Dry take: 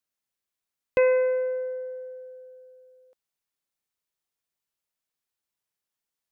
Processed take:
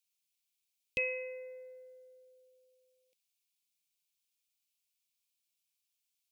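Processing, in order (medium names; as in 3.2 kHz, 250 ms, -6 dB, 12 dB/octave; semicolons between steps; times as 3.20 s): FFT filter 190 Hz 0 dB, 1.6 kHz -24 dB, 2.3 kHz +12 dB; trim -8.5 dB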